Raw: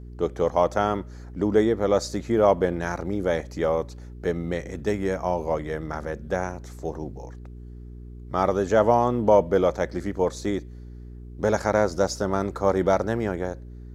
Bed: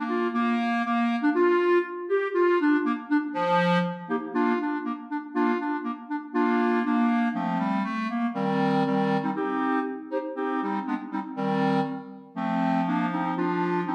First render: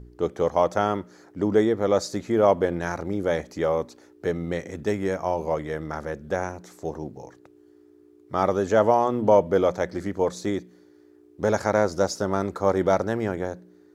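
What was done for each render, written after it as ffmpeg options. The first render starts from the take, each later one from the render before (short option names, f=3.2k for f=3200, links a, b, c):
-af "bandreject=f=60:t=h:w=4,bandreject=f=120:t=h:w=4,bandreject=f=180:t=h:w=4,bandreject=f=240:t=h:w=4"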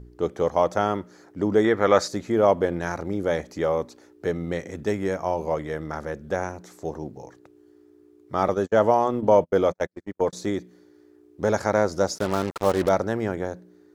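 -filter_complex "[0:a]asettb=1/sr,asplit=3[a][b][c];[a]atrim=end=1.644[d];[b]atrim=start=1.64:end=2.08,asetpts=PTS-STARTPTS,afade=t=in:d=0.004:c=qsin,afade=t=out:st=0.436:d=0.004:c=qsin,equalizer=f=1.7k:t=o:w=1.9:g=12[e];[c]atrim=start=2.076[f];[d][e]acrossfade=d=0.004:c1=hsin:c2=qsin[g];[g][f]acrossfade=d=0.004:c1=qsin:c2=hsin,asettb=1/sr,asplit=3[h][i][j];[h]atrim=end=8.484[k];[i]atrim=start=8.48:end=10.33,asetpts=PTS-STARTPTS,afade=t=in:d=0.004:c=qsin,afade=t=out:st=1.846:d=0.004:c=qsin,agate=range=-47dB:threshold=-27dB:ratio=16:release=100:detection=peak[l];[j]atrim=start=10.326[m];[k][l]acrossfade=d=0.004:c1=hsin:c2=qsin[n];[n][m]acrossfade=d=0.004:c1=qsin:c2=hsin,asettb=1/sr,asplit=3[o][p][q];[o]atrim=end=12.184[r];[p]atrim=start=12.18:end=12.89,asetpts=PTS-STARTPTS,afade=t=in:d=0.004:c=qsin,afade=t=out:st=0.706:d=0.004:c=qsin,acrusher=bits=4:mix=0:aa=0.5[s];[q]atrim=start=12.886[t];[r][s]acrossfade=d=0.004:c1=hsin:c2=qsin[u];[u][t]acrossfade=d=0.004:c1=qsin:c2=hsin"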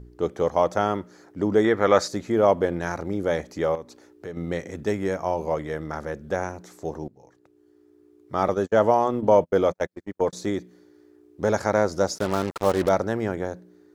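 -filter_complex "[0:a]asettb=1/sr,asplit=3[a][b][c];[a]atrim=end=3.754[d];[b]atrim=start=3.75:end=4.37,asetpts=PTS-STARTPTS,afade=t=in:d=0.004:c=qsin,afade=t=out:st=0.616:d=0.004:c=qsin,acompressor=threshold=-39dB:ratio=2:attack=3.2:release=140:knee=1:detection=peak[e];[c]atrim=start=4.366[f];[d][e]acrossfade=d=0.004:c1=hsin:c2=qsin[g];[g][f]acrossfade=d=0.004:c1=qsin:c2=hsin,asplit=2[h][i];[h]atrim=end=7.08,asetpts=PTS-STARTPTS,afade=t=out:st=7.076:d=0.004:c=hsin:silence=0.158489[j];[i]atrim=start=7.08,asetpts=PTS-STARTPTS,afade=t=in:d=1.66:c=qsin:silence=0.158489[k];[j][k]concat=n=2:v=0:a=1"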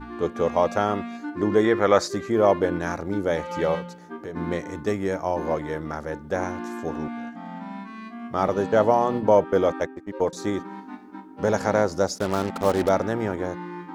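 -filter_complex "[1:a]volume=-10dB[a];[0:a][a]amix=inputs=2:normalize=0"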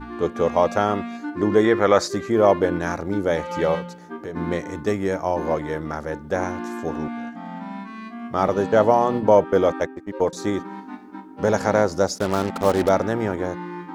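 -af "volume=2.5dB,alimiter=limit=-3dB:level=0:latency=1"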